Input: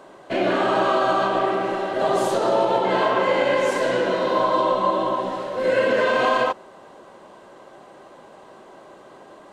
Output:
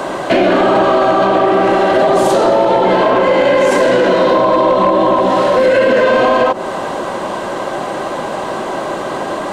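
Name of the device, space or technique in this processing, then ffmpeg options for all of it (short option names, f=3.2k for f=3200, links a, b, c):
mastering chain: -filter_complex "[0:a]equalizer=f=430:t=o:w=0.28:g=-3.5,acrossover=split=130|710[a][b][c];[a]acompressor=threshold=-56dB:ratio=4[d];[b]acompressor=threshold=-22dB:ratio=4[e];[c]acompressor=threshold=-31dB:ratio=4[f];[d][e][f]amix=inputs=3:normalize=0,acompressor=threshold=-27dB:ratio=3,asoftclip=type=tanh:threshold=-20.5dB,asoftclip=type=hard:threshold=-24dB,alimiter=level_in=29.5dB:limit=-1dB:release=50:level=0:latency=1,volume=-4dB"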